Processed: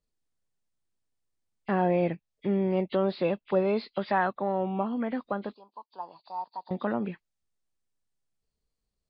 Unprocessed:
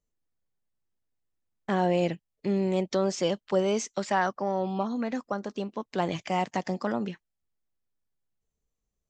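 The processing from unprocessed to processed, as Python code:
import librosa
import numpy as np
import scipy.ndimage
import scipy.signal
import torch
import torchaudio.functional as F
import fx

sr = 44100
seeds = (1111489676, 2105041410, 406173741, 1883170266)

y = fx.freq_compress(x, sr, knee_hz=2000.0, ratio=1.5)
y = fx.env_lowpass_down(y, sr, base_hz=2900.0, full_db=-26.5)
y = fx.double_bandpass(y, sr, hz=2100.0, octaves=2.3, at=(5.54, 6.71))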